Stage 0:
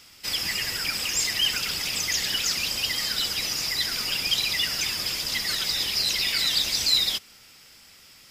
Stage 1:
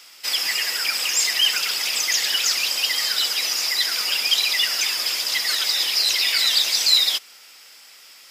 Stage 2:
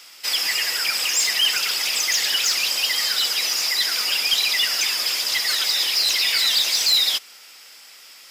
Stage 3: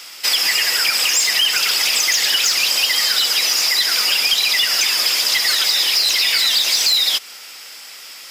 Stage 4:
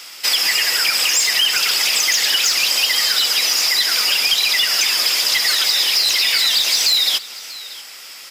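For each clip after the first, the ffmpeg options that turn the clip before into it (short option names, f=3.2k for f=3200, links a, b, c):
-af "highpass=520,volume=5dB"
-af "asoftclip=type=tanh:threshold=-13dB,volume=1.5dB"
-af "acompressor=threshold=-22dB:ratio=6,volume=8.5dB"
-af "aecho=1:1:637:0.119"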